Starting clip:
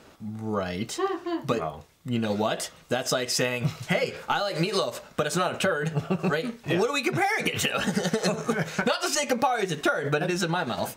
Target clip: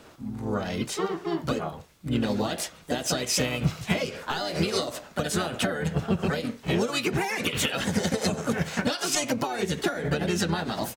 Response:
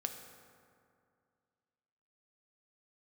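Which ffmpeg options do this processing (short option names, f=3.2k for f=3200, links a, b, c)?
-filter_complex "[0:a]asplit=3[a][b][c];[b]asetrate=22050,aresample=44100,atempo=2,volume=-11dB[d];[c]asetrate=52444,aresample=44100,atempo=0.840896,volume=-5dB[e];[a][d][e]amix=inputs=3:normalize=0,acrossover=split=360|3000[f][g][h];[g]acompressor=threshold=-29dB:ratio=6[i];[f][i][h]amix=inputs=3:normalize=0"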